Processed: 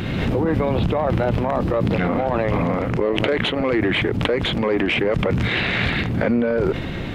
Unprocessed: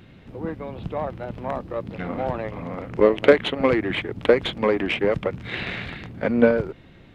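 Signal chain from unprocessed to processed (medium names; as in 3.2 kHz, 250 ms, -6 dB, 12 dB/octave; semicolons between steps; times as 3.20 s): reverse; compression, threshold -31 dBFS, peak gain reduction 22 dB; reverse; loudness maximiser +32 dB; swell ahead of each attack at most 25 dB/s; trim -11 dB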